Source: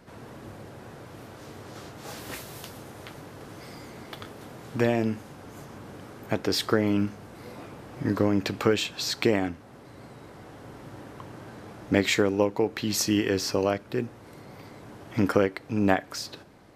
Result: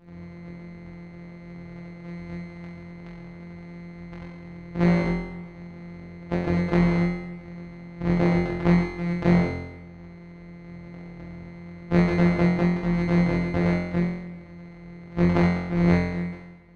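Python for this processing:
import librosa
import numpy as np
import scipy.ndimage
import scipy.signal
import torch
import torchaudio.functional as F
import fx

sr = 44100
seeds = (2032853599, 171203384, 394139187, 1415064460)

y = np.r_[np.sort(x[:len(x) // 256 * 256].reshape(-1, 256), axis=1).ravel(), x[len(x) // 256 * 256:]]
y = fx.spacing_loss(y, sr, db_at_10k=37)
y = fx.room_flutter(y, sr, wall_m=3.9, rt60_s=1.0)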